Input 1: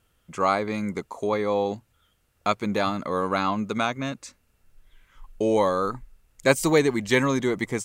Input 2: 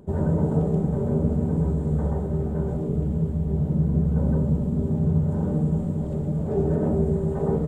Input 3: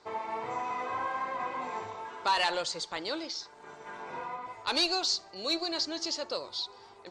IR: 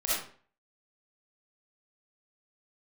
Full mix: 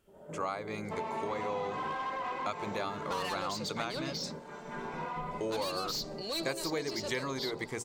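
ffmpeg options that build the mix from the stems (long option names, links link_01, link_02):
-filter_complex "[0:a]equalizer=frequency=210:width=1.5:gain=-7.5,bandreject=frequency=60:width_type=h:width=6,bandreject=frequency=120:width_type=h:width=6,bandreject=frequency=180:width_type=h:width=6,bandreject=frequency=240:width_type=h:width=6,bandreject=frequency=300:width_type=h:width=6,bandreject=frequency=360:width_type=h:width=6,bandreject=frequency=420:width_type=h:width=6,bandreject=frequency=480:width_type=h:width=6,bandreject=frequency=540:width_type=h:width=6,volume=-6dB,asplit=2[link_01][link_02];[1:a]highpass=320,alimiter=level_in=3.5dB:limit=-24dB:level=0:latency=1:release=187,volume=-3.5dB,volume=-9dB,asplit=2[link_03][link_04];[link_04]volume=-15dB[link_05];[2:a]asoftclip=type=tanh:threshold=-31dB,adelay=850,volume=1.5dB[link_06];[link_02]apad=whole_len=338324[link_07];[link_03][link_07]sidechaingate=range=-33dB:threshold=-59dB:ratio=16:detection=peak[link_08];[3:a]atrim=start_sample=2205[link_09];[link_05][link_09]afir=irnorm=-1:irlink=0[link_10];[link_01][link_08][link_06][link_10]amix=inputs=4:normalize=0,acompressor=threshold=-32dB:ratio=4"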